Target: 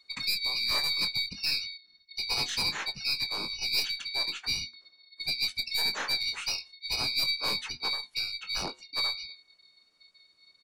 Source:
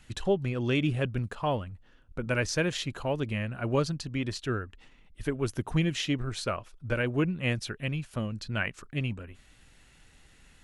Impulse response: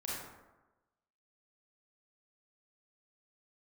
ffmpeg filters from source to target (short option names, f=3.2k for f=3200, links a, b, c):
-filter_complex "[0:a]afftfilt=real='real(if(lt(b,272),68*(eq(floor(b/68),0)*1+eq(floor(b/68),1)*2+eq(floor(b/68),2)*3+eq(floor(b/68),3)*0)+mod(b,68),b),0)':imag='imag(if(lt(b,272),68*(eq(floor(b/68),0)*1+eq(floor(b/68),1)*2+eq(floor(b/68),2)*3+eq(floor(b/68),3)*0)+mod(b,68),b),0)':win_size=2048:overlap=0.75,afftdn=nr=16:nf=-42,bandreject=f=500:w=12,aeval=exprs='0.211*(cos(1*acos(clip(val(0)/0.211,-1,1)))-cos(1*PI/2))+0.0531*(cos(2*acos(clip(val(0)/0.211,-1,1)))-cos(2*PI/2))+0.0531*(cos(5*acos(clip(val(0)/0.211,-1,1)))-cos(5*PI/2))+0.00473*(cos(6*acos(clip(val(0)/0.211,-1,1)))-cos(6*PI/2))':c=same,asplit=2[a][b];[b]adelay=21,volume=-9dB[c];[a][c]amix=inputs=2:normalize=0,acrossover=split=260|440|3800[d][e][f][g];[d]volume=35dB,asoftclip=hard,volume=-35dB[h];[h][e][f][g]amix=inputs=4:normalize=0,asplit=3[i][j][k];[j]asetrate=22050,aresample=44100,atempo=2,volume=-6dB[l];[k]asetrate=37084,aresample=44100,atempo=1.18921,volume=-5dB[m];[i][l][m]amix=inputs=3:normalize=0,flanger=delay=6:depth=1.2:regen=-87:speed=0.38:shape=triangular,volume=-4.5dB"